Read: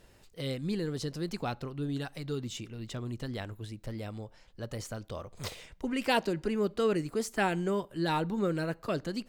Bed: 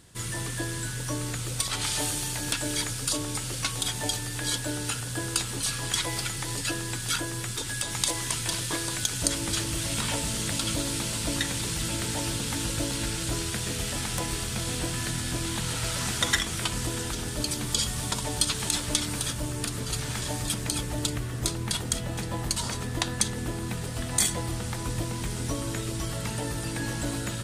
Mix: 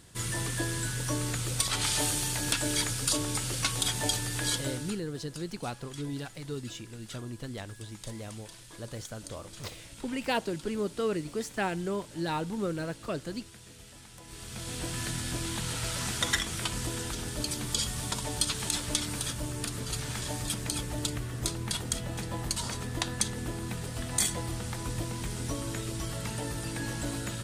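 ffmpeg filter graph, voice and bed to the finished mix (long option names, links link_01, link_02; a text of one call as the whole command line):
ffmpeg -i stem1.wav -i stem2.wav -filter_complex "[0:a]adelay=4200,volume=-2dB[link_01];[1:a]volume=16.5dB,afade=type=out:start_time=4.43:duration=0.58:silence=0.1,afade=type=in:start_time=14.23:duration=0.78:silence=0.149624[link_02];[link_01][link_02]amix=inputs=2:normalize=0" out.wav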